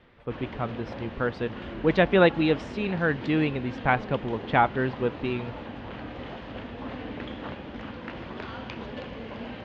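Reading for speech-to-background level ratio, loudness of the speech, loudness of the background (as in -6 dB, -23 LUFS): 12.0 dB, -26.5 LUFS, -38.5 LUFS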